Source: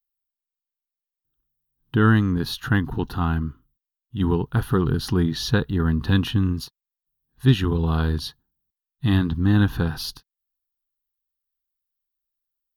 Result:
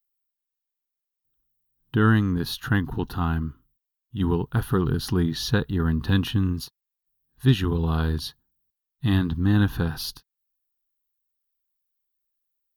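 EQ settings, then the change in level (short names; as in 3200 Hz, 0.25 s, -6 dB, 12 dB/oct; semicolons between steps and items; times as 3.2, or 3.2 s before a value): high shelf 11000 Hz +6.5 dB; -2.0 dB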